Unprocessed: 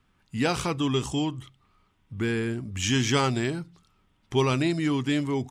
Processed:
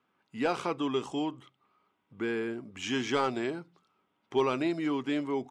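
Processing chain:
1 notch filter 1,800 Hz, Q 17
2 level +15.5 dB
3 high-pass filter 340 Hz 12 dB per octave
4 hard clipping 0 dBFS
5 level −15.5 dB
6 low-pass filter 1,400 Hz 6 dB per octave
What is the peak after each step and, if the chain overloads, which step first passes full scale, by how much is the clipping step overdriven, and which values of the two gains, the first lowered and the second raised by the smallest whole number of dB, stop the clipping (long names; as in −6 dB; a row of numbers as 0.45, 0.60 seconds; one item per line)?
−11.0, +4.5, +7.0, 0.0, −15.5, −15.5 dBFS
step 2, 7.0 dB
step 2 +8.5 dB, step 5 −8.5 dB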